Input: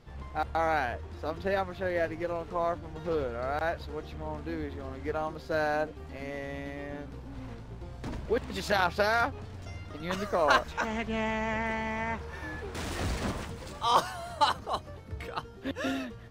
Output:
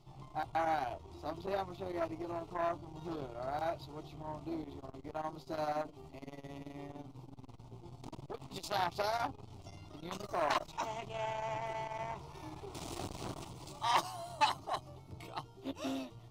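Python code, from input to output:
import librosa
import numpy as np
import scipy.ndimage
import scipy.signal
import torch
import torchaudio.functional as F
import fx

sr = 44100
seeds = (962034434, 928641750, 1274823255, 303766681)

y = fx.fixed_phaser(x, sr, hz=330.0, stages=8)
y = fx.doubler(y, sr, ms=15.0, db=-12.0)
y = fx.transformer_sat(y, sr, knee_hz=2000.0)
y = F.gain(torch.from_numpy(y), -2.0).numpy()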